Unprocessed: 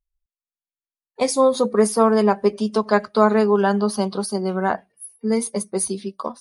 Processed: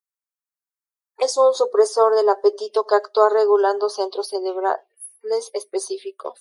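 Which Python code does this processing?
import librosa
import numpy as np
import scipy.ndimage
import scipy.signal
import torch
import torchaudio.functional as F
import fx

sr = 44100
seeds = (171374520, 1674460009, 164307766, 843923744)

y = scipy.signal.sosfilt(scipy.signal.ellip(4, 1.0, 50, 380.0, 'highpass', fs=sr, output='sos'), x)
y = fx.env_phaser(y, sr, low_hz=520.0, high_hz=2400.0, full_db=-20.5)
y = y * librosa.db_to_amplitude(3.0)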